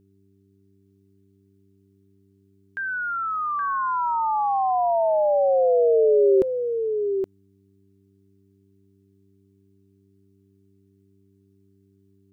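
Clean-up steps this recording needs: de-hum 97.9 Hz, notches 4; inverse comb 0.821 s -7 dB

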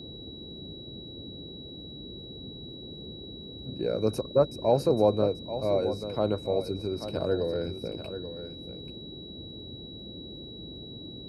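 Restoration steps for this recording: de-click; notch 3900 Hz, Q 30; noise print and reduce 30 dB; inverse comb 0.836 s -11 dB

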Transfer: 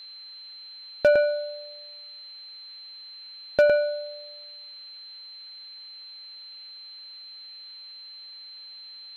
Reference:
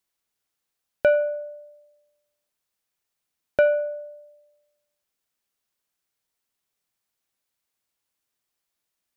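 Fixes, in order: clip repair -10.5 dBFS; notch 4100 Hz, Q 30; noise print and reduce 30 dB; inverse comb 0.109 s -4.5 dB

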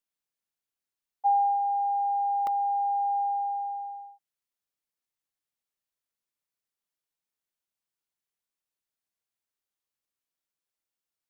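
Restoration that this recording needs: interpolate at 0.97/2.47, 1.2 ms

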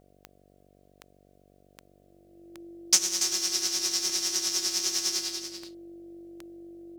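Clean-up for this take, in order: de-click; de-hum 48 Hz, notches 15; notch 340 Hz, Q 30; inverse comb 0.284 s -8.5 dB

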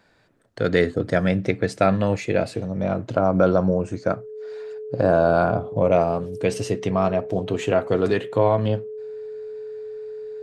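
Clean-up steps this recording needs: notch 430 Hz, Q 30

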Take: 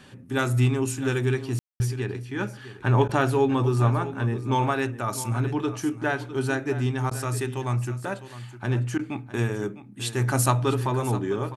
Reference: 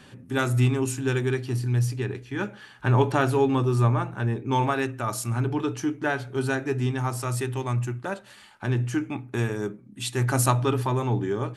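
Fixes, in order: room tone fill 1.59–1.8; interpolate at 3.08/7.1/8.98, 10 ms; inverse comb 0.656 s -14 dB

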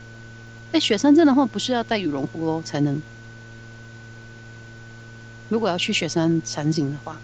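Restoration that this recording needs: de-click; de-hum 114 Hz, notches 5; notch 1500 Hz, Q 30; denoiser 25 dB, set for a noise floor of -41 dBFS

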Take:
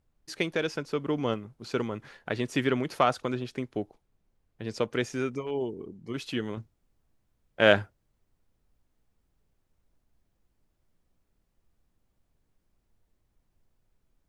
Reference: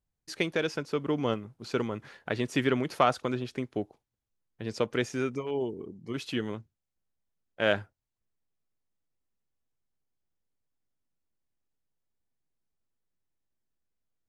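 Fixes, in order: expander -66 dBFS, range -21 dB; gain 0 dB, from 6.57 s -6 dB

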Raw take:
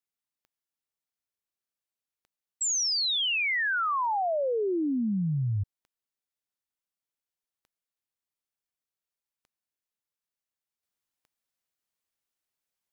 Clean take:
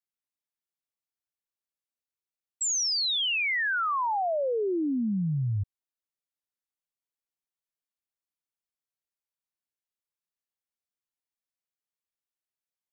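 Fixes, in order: de-click; gain correction -5.5 dB, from 10.83

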